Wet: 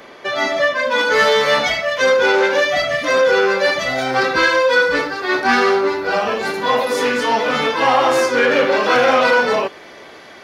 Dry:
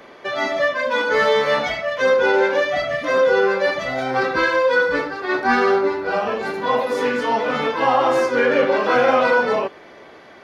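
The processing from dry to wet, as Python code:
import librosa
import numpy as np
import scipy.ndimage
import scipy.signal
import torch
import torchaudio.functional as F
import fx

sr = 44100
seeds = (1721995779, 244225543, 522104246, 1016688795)

y = fx.high_shelf(x, sr, hz=2800.0, db=fx.steps((0.0, 5.5), (0.98, 10.5)))
y = fx.transformer_sat(y, sr, knee_hz=1000.0)
y = F.gain(torch.from_numpy(y), 2.5).numpy()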